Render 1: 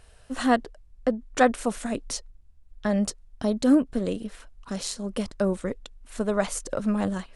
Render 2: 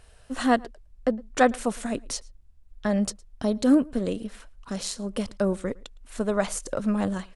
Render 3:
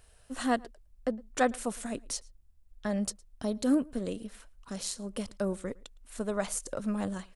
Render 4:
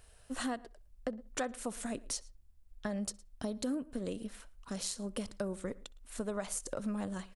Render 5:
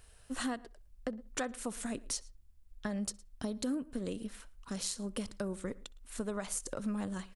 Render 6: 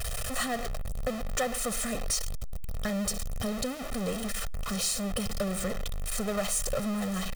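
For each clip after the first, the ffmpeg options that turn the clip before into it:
ffmpeg -i in.wav -filter_complex "[0:a]asplit=2[link_01][link_02];[link_02]adelay=110.8,volume=-25dB,highshelf=frequency=4000:gain=-2.49[link_03];[link_01][link_03]amix=inputs=2:normalize=0" out.wav
ffmpeg -i in.wav -af "highshelf=frequency=8800:gain=11,volume=-7dB" out.wav
ffmpeg -i in.wav -filter_complex "[0:a]acompressor=threshold=-33dB:ratio=6,asplit=2[link_01][link_02];[link_02]adelay=63,lowpass=frequency=3500:poles=1,volume=-23.5dB,asplit=2[link_03][link_04];[link_04]adelay=63,lowpass=frequency=3500:poles=1,volume=0.39,asplit=2[link_05][link_06];[link_06]adelay=63,lowpass=frequency=3500:poles=1,volume=0.39[link_07];[link_01][link_03][link_05][link_07]amix=inputs=4:normalize=0" out.wav
ffmpeg -i in.wav -af "equalizer=frequency=630:width_type=o:width=0.72:gain=-4,volume=1dB" out.wav
ffmpeg -i in.wav -af "aeval=exprs='val(0)+0.5*0.0282*sgn(val(0))':channel_layout=same,aecho=1:1:1.6:0.9" out.wav

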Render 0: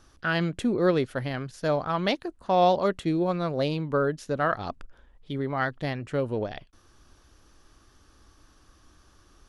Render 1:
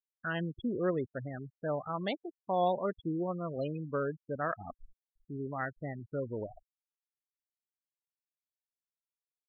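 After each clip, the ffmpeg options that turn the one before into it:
ffmpeg -i in.wav -af "afftfilt=real='re*gte(hypot(re,im),0.0631)':imag='im*gte(hypot(re,im),0.0631)':win_size=1024:overlap=0.75,volume=-8.5dB" out.wav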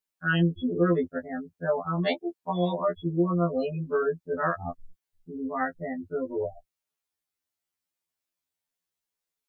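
ffmpeg -i in.wav -af "acontrast=25,afftfilt=real='re*2*eq(mod(b,4),0)':imag='im*2*eq(mod(b,4),0)':win_size=2048:overlap=0.75,volume=5dB" out.wav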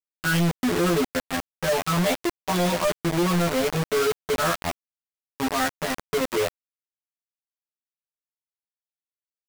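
ffmpeg -i in.wav -af "aresample=11025,asoftclip=type=hard:threshold=-27dB,aresample=44100,acrusher=bits=4:mix=0:aa=0.000001,volume=4.5dB" out.wav

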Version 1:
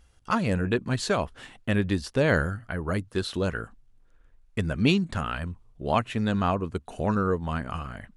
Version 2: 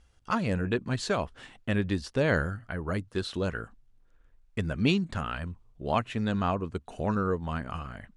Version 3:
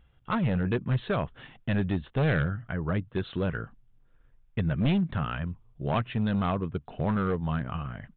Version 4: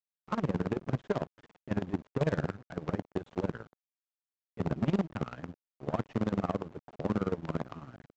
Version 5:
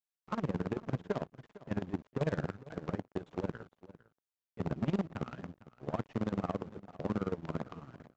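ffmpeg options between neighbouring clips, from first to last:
ffmpeg -i in.wav -af "lowpass=8900,volume=-3dB" out.wav
ffmpeg -i in.wav -af "equalizer=frequency=140:width=2:gain=9.5,aresample=8000,asoftclip=type=hard:threshold=-21dB,aresample=44100" out.wav
ffmpeg -i in.wav -af "tremolo=f=18:d=0.77,aresample=16000,acrusher=bits=5:dc=4:mix=0:aa=0.000001,aresample=44100,bandpass=frequency=370:width_type=q:width=0.5:csg=0" out.wav
ffmpeg -i in.wav -af "aecho=1:1:454:0.126,volume=-3.5dB" out.wav

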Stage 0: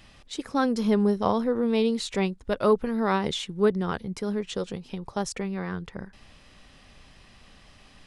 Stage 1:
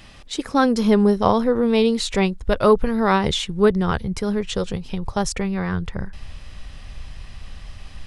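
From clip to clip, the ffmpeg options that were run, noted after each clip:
ffmpeg -i in.wav -af "asubboost=boost=5:cutoff=110,volume=7.5dB" out.wav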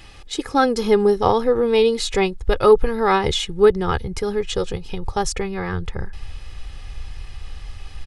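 ffmpeg -i in.wav -af "aecho=1:1:2.4:0.55" out.wav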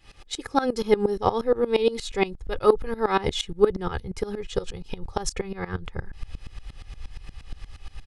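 ffmpeg -i in.wav -af "aeval=exprs='val(0)*pow(10,-19*if(lt(mod(-8.5*n/s,1),2*abs(-8.5)/1000),1-mod(-8.5*n/s,1)/(2*abs(-8.5)/1000),(mod(-8.5*n/s,1)-2*abs(-8.5)/1000)/(1-2*abs(-8.5)/1000))/20)':channel_layout=same" out.wav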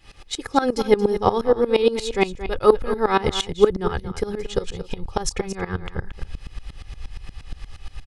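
ffmpeg -i in.wav -af "aecho=1:1:227:0.251,volume=3.5dB" out.wav

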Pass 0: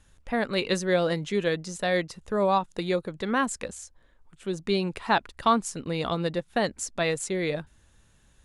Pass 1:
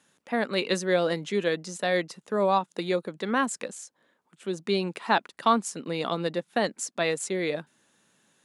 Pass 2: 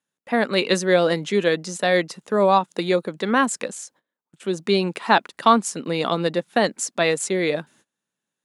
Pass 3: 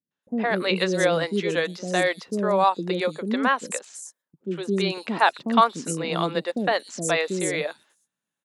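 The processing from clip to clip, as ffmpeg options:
ffmpeg -i in.wav -af "highpass=frequency=180:width=0.5412,highpass=frequency=180:width=1.3066" out.wav
ffmpeg -i in.wav -af "agate=range=-25dB:threshold=-58dB:ratio=16:detection=peak,volume=6.5dB" out.wav
ffmpeg -i in.wav -filter_complex "[0:a]acrossover=split=420|5600[link_01][link_02][link_03];[link_02]adelay=110[link_04];[link_03]adelay=230[link_05];[link_01][link_04][link_05]amix=inputs=3:normalize=0,volume=-1.5dB" out.wav

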